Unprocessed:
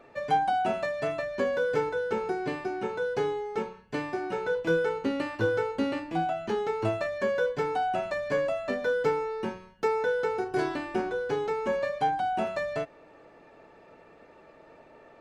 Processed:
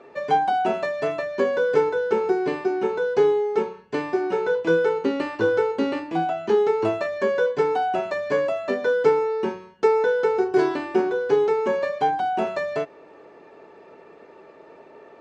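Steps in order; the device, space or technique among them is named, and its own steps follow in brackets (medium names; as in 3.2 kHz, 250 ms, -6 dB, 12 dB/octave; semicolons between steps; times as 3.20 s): car door speaker (cabinet simulation 98–7800 Hz, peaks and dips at 120 Hz -7 dB, 400 Hz +9 dB, 1 kHz +4 dB); trim +3.5 dB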